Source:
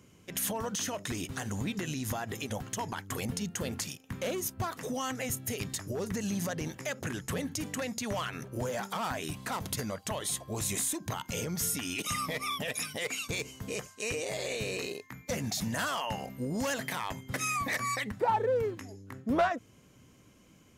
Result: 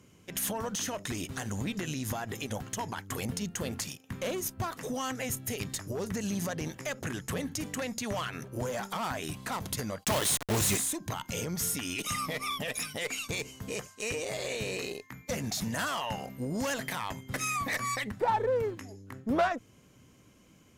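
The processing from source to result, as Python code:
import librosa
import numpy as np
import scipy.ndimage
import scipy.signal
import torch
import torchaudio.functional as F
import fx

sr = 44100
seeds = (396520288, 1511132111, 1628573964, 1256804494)

y = fx.quant_companded(x, sr, bits=2, at=(10.03, 10.76), fade=0.02)
y = fx.cheby_harmonics(y, sr, harmonics=(4, 8), levels_db=(-27, -38), full_scale_db=-19.5)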